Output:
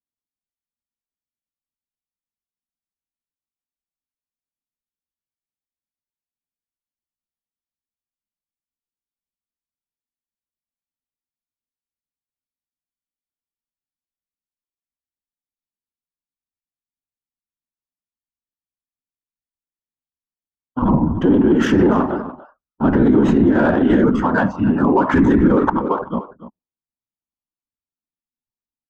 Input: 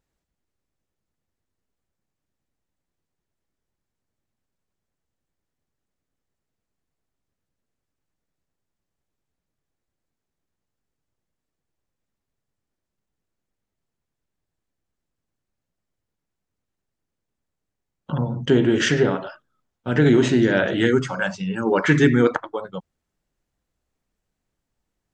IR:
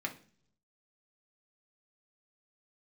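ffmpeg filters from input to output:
-filter_complex "[0:a]afftdn=nr=32:nf=-48,afftfilt=real='hypot(re,im)*cos(2*PI*random(0))':imag='hypot(re,im)*sin(2*PI*random(1))':win_size=512:overlap=0.75,equalizer=f=5700:w=0.88:g=-5.5,atempo=0.87,equalizer=f=125:t=o:w=1:g=-4,equalizer=f=250:t=o:w=1:g=10,equalizer=f=500:t=o:w=1:g=-5,equalizer=f=1000:t=o:w=1:g=11,equalizer=f=2000:t=o:w=1:g=-9,equalizer=f=4000:t=o:w=1:g=-8,adynamicsmooth=sensitivity=5.5:basefreq=4400,asplit=2[s0][s1];[s1]adelay=291.5,volume=0.178,highshelf=f=4000:g=-6.56[s2];[s0][s2]amix=inputs=2:normalize=0,alimiter=level_in=7.08:limit=0.891:release=50:level=0:latency=1,volume=0.562"

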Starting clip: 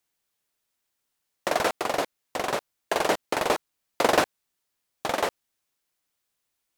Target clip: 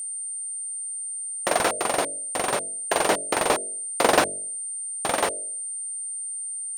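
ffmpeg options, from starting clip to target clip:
-af "aeval=exprs='val(0)+0.0251*sin(2*PI*8900*n/s)':c=same,bandreject=f=47.5:t=h:w=4,bandreject=f=95:t=h:w=4,bandreject=f=142.5:t=h:w=4,bandreject=f=190:t=h:w=4,bandreject=f=237.5:t=h:w=4,bandreject=f=285:t=h:w=4,bandreject=f=332.5:t=h:w=4,bandreject=f=380:t=h:w=4,bandreject=f=427.5:t=h:w=4,bandreject=f=475:t=h:w=4,bandreject=f=522.5:t=h:w=4,bandreject=f=570:t=h:w=4,bandreject=f=617.5:t=h:w=4,bandreject=f=665:t=h:w=4,volume=1.33"

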